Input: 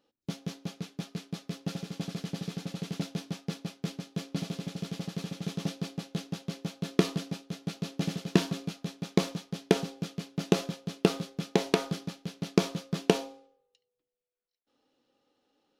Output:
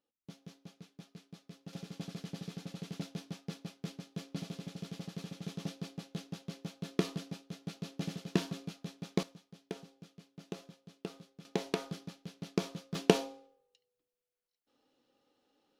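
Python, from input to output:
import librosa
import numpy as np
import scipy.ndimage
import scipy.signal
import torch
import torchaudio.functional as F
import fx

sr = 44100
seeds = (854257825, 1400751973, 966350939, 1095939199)

y = fx.gain(x, sr, db=fx.steps((0.0, -14.5), (1.73, -7.0), (9.23, -18.5), (11.45, -8.5), (12.95, -1.0)))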